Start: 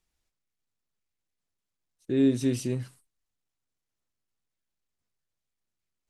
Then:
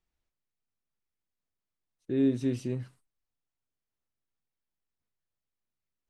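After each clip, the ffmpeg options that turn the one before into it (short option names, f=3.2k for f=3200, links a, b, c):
-af "lowpass=f=2.5k:p=1,volume=-3dB"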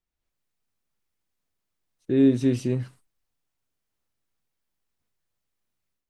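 -af "dynaudnorm=f=180:g=3:m=12dB,volume=-4.5dB"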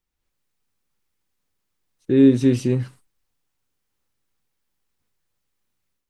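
-af "asuperstop=centerf=660:order=4:qfactor=7.8,volume=5dB"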